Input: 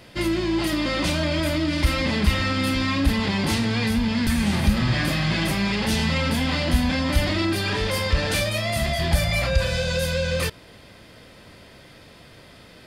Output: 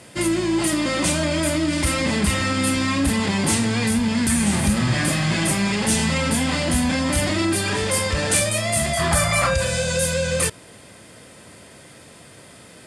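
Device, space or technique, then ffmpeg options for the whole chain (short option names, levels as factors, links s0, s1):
budget condenser microphone: -filter_complex "[0:a]highpass=93,lowpass=f=9700:w=0.5412,lowpass=f=9700:w=1.3066,highshelf=f=6300:t=q:w=1.5:g=11.5,asettb=1/sr,asplit=3[s0][s1][s2];[s0]atrim=end=8.974[s3];[s1]atrim=start=8.97:end=9.54,asetpts=PTS-STARTPTS,afade=t=in:d=0.004:c=qsin,afade=t=out:st=0.566:d=0.004:c=qsin,equalizer=f=1200:t=o:w=0.73:g=13.5[s4];[s2]atrim=start=9.536[s5];[s3][s4]acrossfade=d=0.004:c1=hsin:c2=qsin[s6];[s6][s5]acrossfade=d=0.004:c1=qsin:c2=hsin,volume=1.33"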